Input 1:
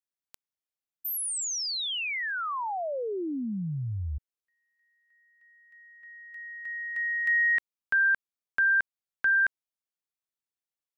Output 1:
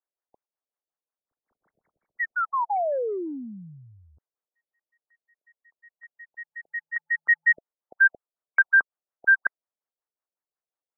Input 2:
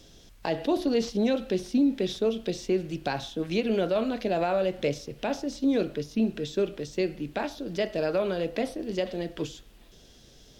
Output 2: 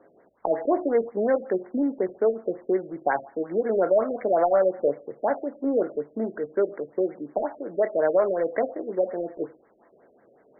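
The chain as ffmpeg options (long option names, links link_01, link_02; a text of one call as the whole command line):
ffmpeg -i in.wav -af "highpass=500,lowpass=3100,adynamicsmooth=sensitivity=8:basefreq=1900,afftfilt=real='re*lt(b*sr/1024,650*pow(2300/650,0.5+0.5*sin(2*PI*5.5*pts/sr)))':imag='im*lt(b*sr/1024,650*pow(2300/650,0.5+0.5*sin(2*PI*5.5*pts/sr)))':win_size=1024:overlap=0.75,volume=8.5dB" out.wav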